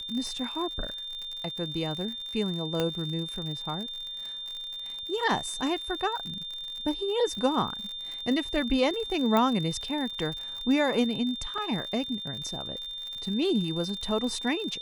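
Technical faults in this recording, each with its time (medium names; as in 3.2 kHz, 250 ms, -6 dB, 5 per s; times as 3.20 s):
crackle 64 per s -34 dBFS
whine 3.6 kHz -35 dBFS
2.80 s: pop -14 dBFS
9.37 s: pop -13 dBFS
11.58 s: dropout 2.8 ms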